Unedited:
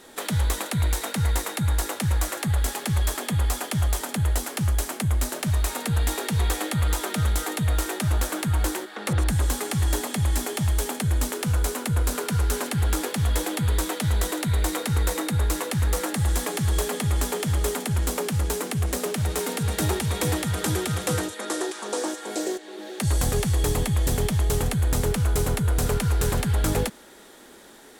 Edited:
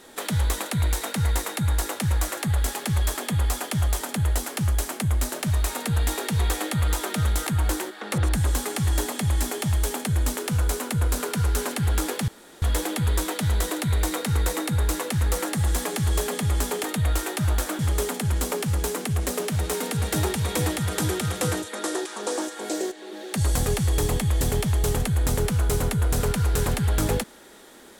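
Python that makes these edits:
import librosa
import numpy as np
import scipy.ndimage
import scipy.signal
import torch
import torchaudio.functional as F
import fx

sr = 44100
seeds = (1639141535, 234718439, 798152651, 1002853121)

y = fx.edit(x, sr, fx.move(start_s=7.47, length_s=0.95, to_s=17.45),
    fx.insert_room_tone(at_s=13.23, length_s=0.34), tone=tone)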